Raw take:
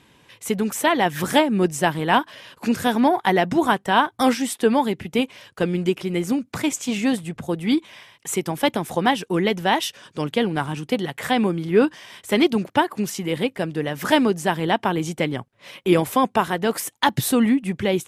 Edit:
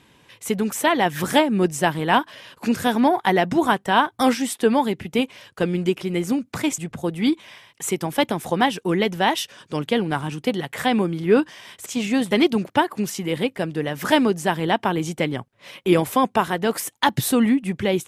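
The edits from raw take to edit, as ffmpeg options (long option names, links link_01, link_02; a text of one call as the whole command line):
ffmpeg -i in.wav -filter_complex "[0:a]asplit=4[link_01][link_02][link_03][link_04];[link_01]atrim=end=6.782[link_05];[link_02]atrim=start=7.228:end=12.312[link_06];[link_03]atrim=start=6.778:end=7.232[link_07];[link_04]atrim=start=12.308[link_08];[link_05][link_06]acrossfade=duration=0.004:curve1=hsin:curve2=hsin[link_09];[link_09][link_07]acrossfade=duration=0.004:curve1=hsin:curve2=hsin[link_10];[link_10][link_08]acrossfade=duration=0.004:curve1=hsin:curve2=hsin" out.wav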